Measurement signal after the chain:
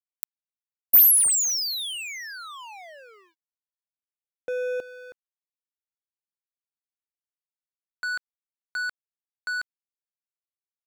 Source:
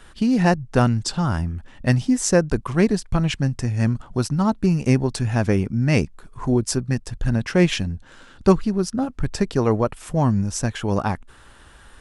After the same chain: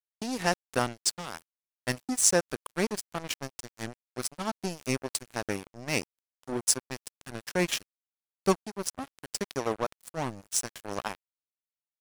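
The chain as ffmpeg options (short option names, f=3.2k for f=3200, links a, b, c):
-af "aemphasis=mode=production:type=bsi,aeval=exprs='sgn(val(0))*max(abs(val(0))-0.0596,0)':c=same,volume=-4dB"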